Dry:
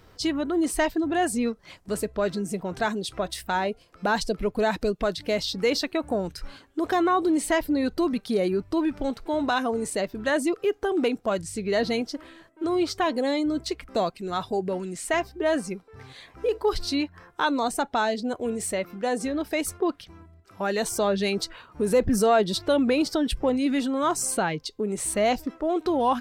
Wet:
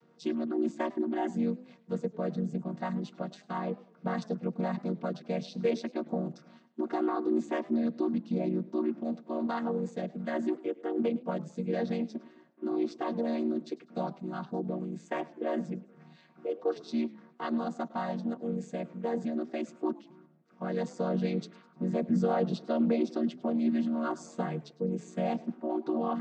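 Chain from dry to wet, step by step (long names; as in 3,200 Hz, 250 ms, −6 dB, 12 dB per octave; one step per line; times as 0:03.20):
channel vocoder with a chord as carrier minor triad, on D#3
feedback echo with a swinging delay time 103 ms, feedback 40%, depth 133 cents, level −20 dB
level −5.5 dB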